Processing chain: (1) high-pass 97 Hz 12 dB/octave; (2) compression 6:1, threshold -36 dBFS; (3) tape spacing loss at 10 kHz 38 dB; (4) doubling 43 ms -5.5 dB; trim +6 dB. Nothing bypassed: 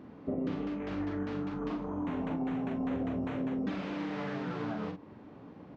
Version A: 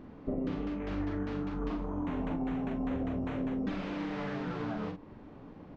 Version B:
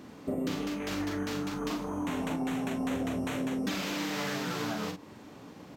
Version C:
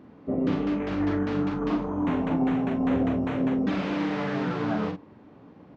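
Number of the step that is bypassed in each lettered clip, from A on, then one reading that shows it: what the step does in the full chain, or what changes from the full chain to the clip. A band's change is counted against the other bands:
1, 125 Hz band +1.5 dB; 3, 4 kHz band +11.5 dB; 2, mean gain reduction 7.0 dB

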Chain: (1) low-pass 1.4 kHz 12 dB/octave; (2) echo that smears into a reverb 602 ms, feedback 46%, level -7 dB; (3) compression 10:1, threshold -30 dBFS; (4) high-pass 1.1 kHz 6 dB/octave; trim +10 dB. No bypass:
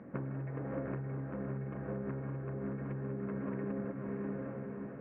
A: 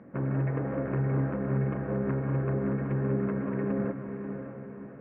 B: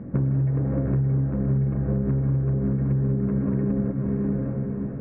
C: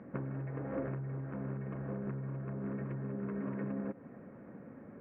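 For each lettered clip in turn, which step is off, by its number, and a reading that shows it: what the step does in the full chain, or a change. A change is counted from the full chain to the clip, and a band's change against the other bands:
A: 3, mean gain reduction 7.5 dB; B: 4, 1 kHz band -10.5 dB; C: 2, momentary loudness spread change +11 LU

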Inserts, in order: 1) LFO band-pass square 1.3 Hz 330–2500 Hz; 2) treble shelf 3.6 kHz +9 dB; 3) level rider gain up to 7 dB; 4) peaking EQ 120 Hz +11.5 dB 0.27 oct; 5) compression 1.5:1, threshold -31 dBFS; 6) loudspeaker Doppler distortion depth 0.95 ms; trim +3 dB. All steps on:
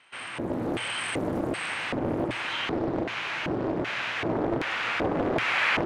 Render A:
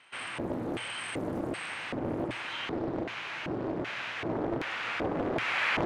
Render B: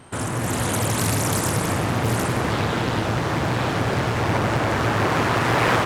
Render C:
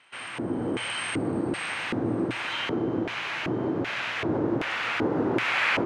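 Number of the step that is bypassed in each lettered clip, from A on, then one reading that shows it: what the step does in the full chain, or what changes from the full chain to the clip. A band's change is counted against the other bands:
3, crest factor change +1.5 dB; 1, 8 kHz band +11.0 dB; 6, 250 Hz band +2.0 dB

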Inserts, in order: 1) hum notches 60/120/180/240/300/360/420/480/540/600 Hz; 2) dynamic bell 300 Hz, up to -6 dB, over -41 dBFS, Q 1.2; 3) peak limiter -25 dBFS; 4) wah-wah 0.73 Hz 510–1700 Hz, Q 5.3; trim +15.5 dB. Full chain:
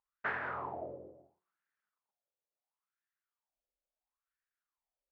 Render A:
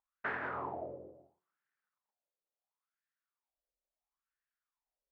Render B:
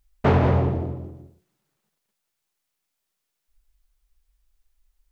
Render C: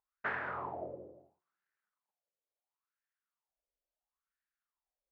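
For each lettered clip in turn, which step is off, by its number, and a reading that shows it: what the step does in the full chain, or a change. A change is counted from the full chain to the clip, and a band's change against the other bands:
2, 250 Hz band +2.5 dB; 4, 2 kHz band -19.5 dB; 1, momentary loudness spread change -1 LU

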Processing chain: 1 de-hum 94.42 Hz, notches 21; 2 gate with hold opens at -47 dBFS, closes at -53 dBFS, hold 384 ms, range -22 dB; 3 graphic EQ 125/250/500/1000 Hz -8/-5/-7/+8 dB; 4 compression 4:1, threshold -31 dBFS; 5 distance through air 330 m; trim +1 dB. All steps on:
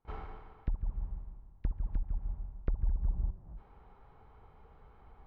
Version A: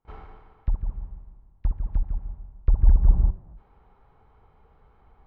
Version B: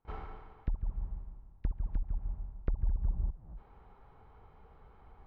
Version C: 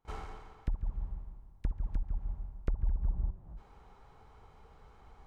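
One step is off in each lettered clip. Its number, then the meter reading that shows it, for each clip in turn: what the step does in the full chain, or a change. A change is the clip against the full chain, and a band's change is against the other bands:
4, mean gain reduction 6.0 dB; 1, momentary loudness spread change +1 LU; 5, 2 kHz band +2.5 dB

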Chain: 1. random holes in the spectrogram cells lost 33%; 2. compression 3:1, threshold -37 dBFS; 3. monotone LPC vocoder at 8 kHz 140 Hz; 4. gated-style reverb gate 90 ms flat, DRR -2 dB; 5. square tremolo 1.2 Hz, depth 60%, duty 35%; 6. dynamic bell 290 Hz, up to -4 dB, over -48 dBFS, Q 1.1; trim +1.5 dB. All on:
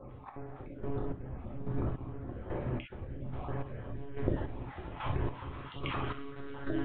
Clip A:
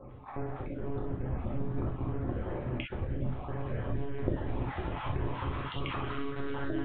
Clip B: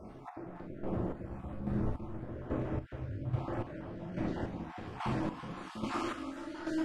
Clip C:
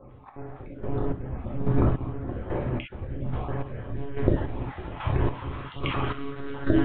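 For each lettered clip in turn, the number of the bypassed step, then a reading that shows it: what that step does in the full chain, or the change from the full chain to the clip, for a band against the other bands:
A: 5, momentary loudness spread change -5 LU; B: 3, 250 Hz band +3.0 dB; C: 2, mean gain reduction 7.5 dB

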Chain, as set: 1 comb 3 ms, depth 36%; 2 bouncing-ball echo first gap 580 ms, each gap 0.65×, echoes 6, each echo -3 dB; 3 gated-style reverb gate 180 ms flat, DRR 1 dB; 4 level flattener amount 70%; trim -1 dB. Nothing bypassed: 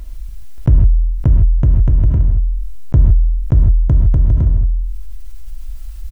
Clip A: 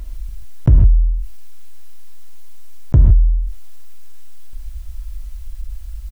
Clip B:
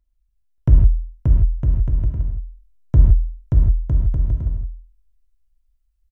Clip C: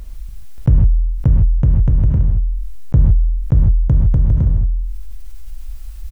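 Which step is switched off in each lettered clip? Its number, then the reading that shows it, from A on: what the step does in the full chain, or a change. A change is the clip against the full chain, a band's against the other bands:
2, momentary loudness spread change +7 LU; 4, crest factor change +5.5 dB; 1, loudness change -1.0 LU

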